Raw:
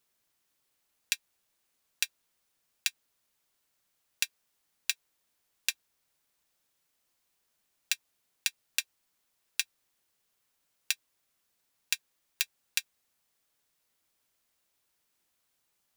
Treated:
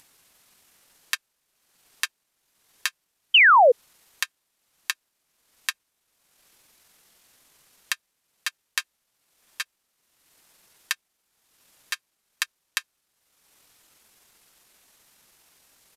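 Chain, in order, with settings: bell 140 Hz -6.5 dB 0.21 oct; in parallel at +2 dB: upward compressor, threshold -40 dBFS; on the sum: pitch shift -7 st; painted sound fall, 3.34–3.72, 450–3200 Hz -5 dBFS; compressor 2.5:1, threshold -9 dBFS, peak gain reduction 3.5 dB; gain -5 dB

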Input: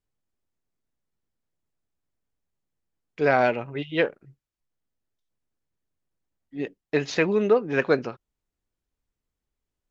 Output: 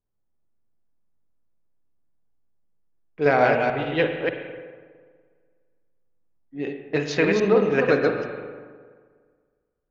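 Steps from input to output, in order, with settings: reverse delay 0.148 s, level -2.5 dB; spring tank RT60 1.8 s, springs 41/51 ms, chirp 30 ms, DRR 5.5 dB; low-pass opened by the level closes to 1200 Hz, open at -20.5 dBFS

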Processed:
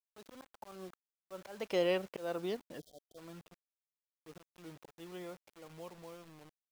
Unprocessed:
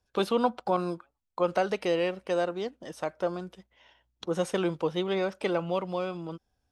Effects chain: Doppler pass-by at 2.14, 25 m/s, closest 13 m; low-pass opened by the level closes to 2500 Hz, open at -27.5 dBFS; auto swell 0.283 s; bit-crush 9-bit; spectral gain 2.79–3.17, 760–3100 Hz -28 dB; gain -2.5 dB

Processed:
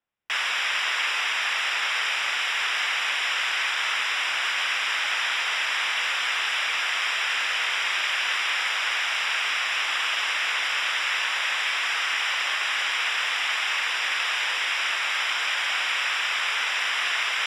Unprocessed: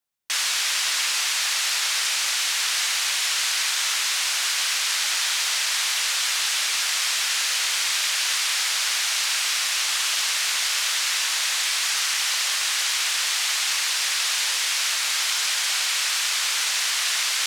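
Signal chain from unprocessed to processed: polynomial smoothing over 25 samples; gain +3.5 dB

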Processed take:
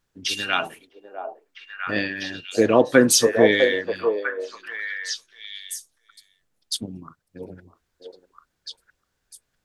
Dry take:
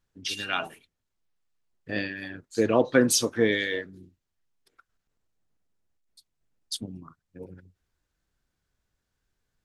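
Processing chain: low shelf 140 Hz -6 dB; on a send: delay with a stepping band-pass 0.651 s, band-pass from 570 Hz, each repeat 1.4 oct, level -2 dB; on the sum: gain +6 dB

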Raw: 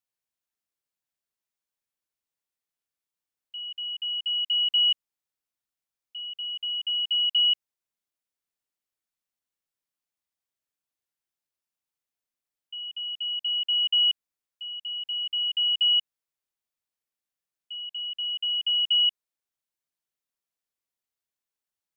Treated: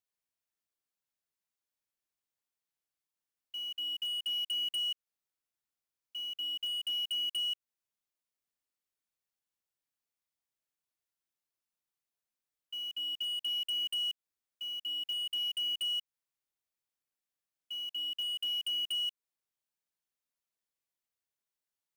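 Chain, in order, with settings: compressor 5:1, threshold -29 dBFS, peak gain reduction 8.5 dB; short-mantissa float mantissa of 2-bit; wavefolder -27 dBFS; gain -3 dB

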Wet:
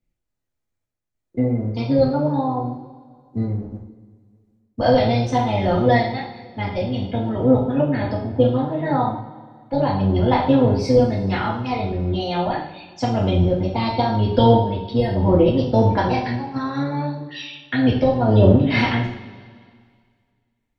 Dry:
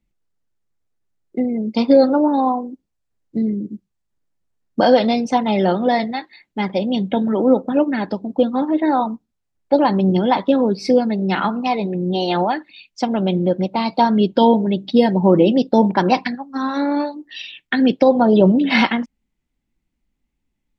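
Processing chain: octaver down 1 oct, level 0 dB; random-step tremolo 3.5 Hz; two-slope reverb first 0.5 s, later 2 s, from -17 dB, DRR -5 dB; gain -5.5 dB

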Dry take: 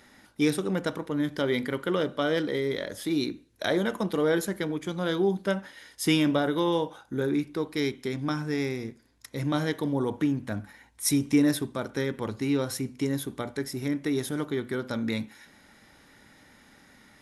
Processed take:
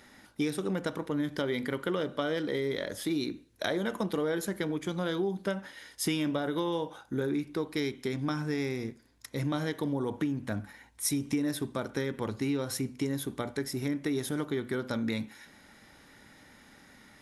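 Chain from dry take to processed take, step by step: compressor, threshold -27 dBFS, peak gain reduction 9.5 dB

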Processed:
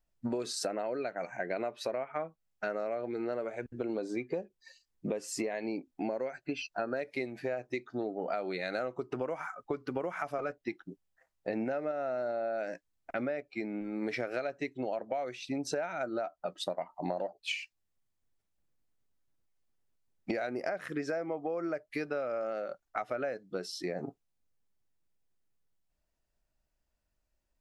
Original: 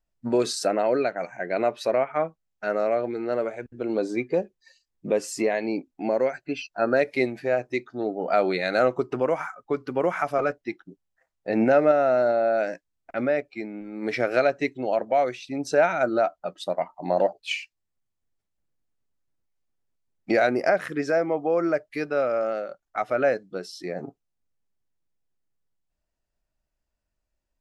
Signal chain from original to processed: compressor 12:1, threshold -31 dBFS, peak gain reduction 17.5 dB

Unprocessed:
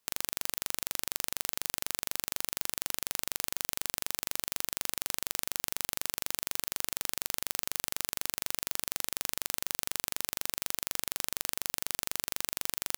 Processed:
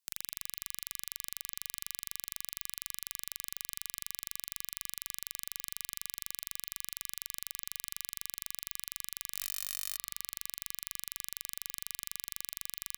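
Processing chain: passive tone stack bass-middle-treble 5-5-5; 9.3–9.97 flutter echo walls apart 3.7 m, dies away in 0.57 s; reverb RT60 2.4 s, pre-delay 41 ms, DRR 15.5 dB

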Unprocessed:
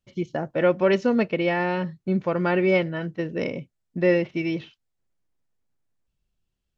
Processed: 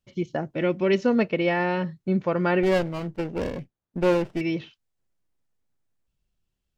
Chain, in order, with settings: 0.41–0.98 spectral gain 420–1900 Hz -7 dB; 2.63–4.41 running maximum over 17 samples

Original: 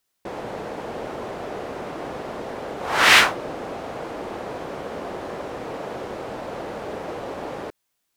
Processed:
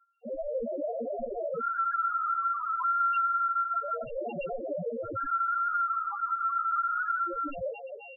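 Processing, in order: sample sorter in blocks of 32 samples; LPC vocoder at 8 kHz pitch kept; air absorption 280 m; reverse; upward compressor, threshold -34 dBFS; reverse; doubler 17 ms -3 dB; on a send: band-limited delay 0.26 s, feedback 61%, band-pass 640 Hz, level -10 dB; on the sum: dynamic EQ 1500 Hz, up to +6 dB, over -42 dBFS, Q 1.9; phaser stages 12, 0.28 Hz, lowest notch 510–1500 Hz; overdrive pedal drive 22 dB, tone 1400 Hz, clips at -2 dBFS; feedback echo 0.162 s, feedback 31%, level -12 dB; loudest bins only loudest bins 2; compressor 10:1, threshold -27 dBFS, peak gain reduction 16.5 dB; gain +1.5 dB

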